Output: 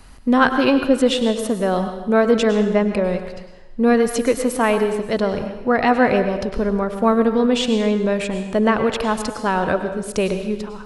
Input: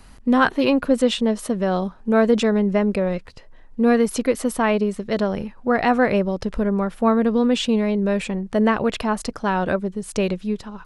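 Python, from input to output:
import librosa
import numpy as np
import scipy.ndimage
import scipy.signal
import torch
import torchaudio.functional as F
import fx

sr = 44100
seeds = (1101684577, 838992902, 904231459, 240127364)

y = fx.peak_eq(x, sr, hz=200.0, db=-3.5, octaves=0.36)
y = fx.rev_plate(y, sr, seeds[0], rt60_s=0.96, hf_ratio=0.95, predelay_ms=90, drr_db=8.0)
y = y * 10.0 ** (2.0 / 20.0)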